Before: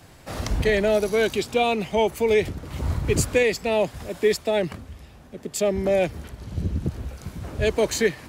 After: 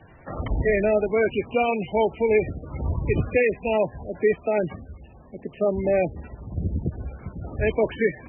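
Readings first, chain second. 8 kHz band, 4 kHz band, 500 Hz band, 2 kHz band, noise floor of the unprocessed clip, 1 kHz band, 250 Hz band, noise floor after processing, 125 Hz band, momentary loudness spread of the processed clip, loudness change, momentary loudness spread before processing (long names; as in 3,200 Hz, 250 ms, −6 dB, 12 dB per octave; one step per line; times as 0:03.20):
below −40 dB, below −10 dB, −0.5 dB, −1.5 dB, −48 dBFS, −0.5 dB, −0.5 dB, −49 dBFS, −0.5 dB, 15 LU, −0.5 dB, 14 LU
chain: MP3 8 kbit/s 22,050 Hz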